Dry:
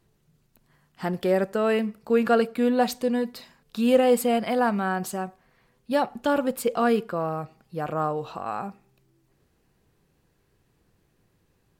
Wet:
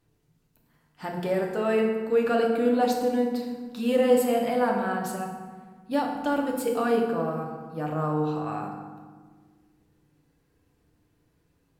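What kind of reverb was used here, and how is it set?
feedback delay network reverb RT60 1.5 s, low-frequency decay 1.5×, high-frequency decay 0.6×, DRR −0.5 dB
level −5.5 dB

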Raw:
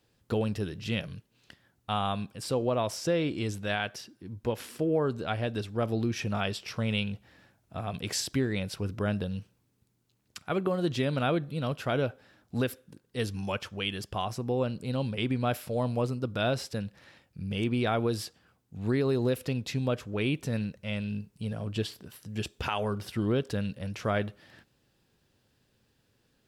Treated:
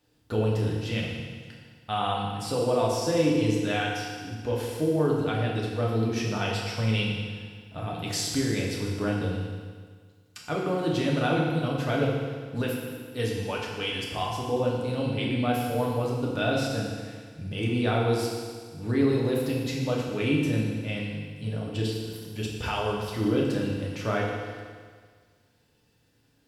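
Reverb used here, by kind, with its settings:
feedback delay network reverb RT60 1.7 s, low-frequency decay 1×, high-frequency decay 1×, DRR −3.5 dB
level −2 dB

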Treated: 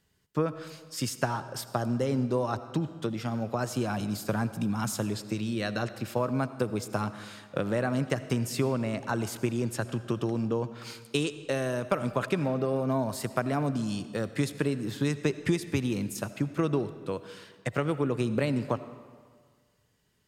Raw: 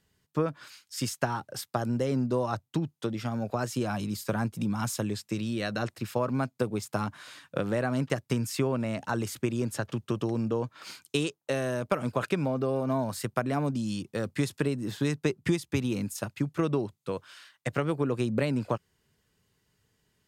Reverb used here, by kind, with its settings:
comb and all-pass reverb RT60 1.7 s, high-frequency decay 0.8×, pre-delay 40 ms, DRR 13 dB

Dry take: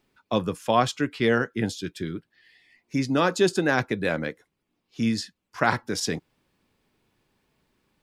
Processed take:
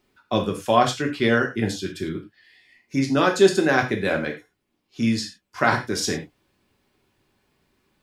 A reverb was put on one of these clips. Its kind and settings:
reverb whose tail is shaped and stops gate 130 ms falling, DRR 2 dB
level +1 dB

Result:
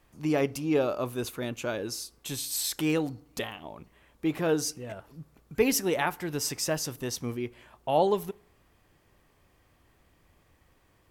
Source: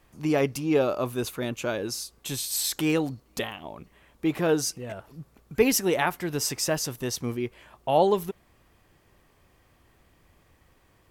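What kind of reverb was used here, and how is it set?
feedback delay network reverb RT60 0.64 s, low-frequency decay 1.1×, high-frequency decay 0.6×, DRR 20 dB
level −3 dB

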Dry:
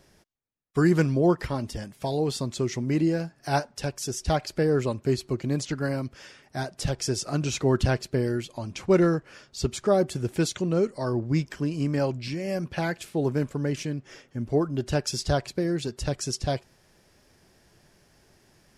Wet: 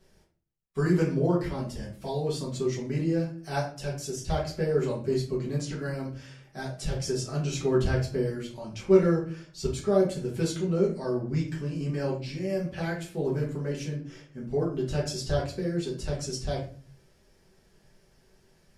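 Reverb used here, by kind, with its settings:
rectangular room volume 34 cubic metres, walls mixed, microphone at 1.1 metres
level −11 dB

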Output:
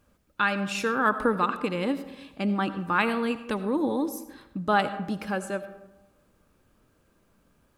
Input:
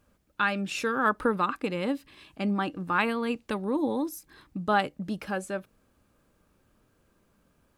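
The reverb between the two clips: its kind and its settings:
comb and all-pass reverb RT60 0.98 s, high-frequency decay 0.45×, pre-delay 40 ms, DRR 11.5 dB
level +1.5 dB

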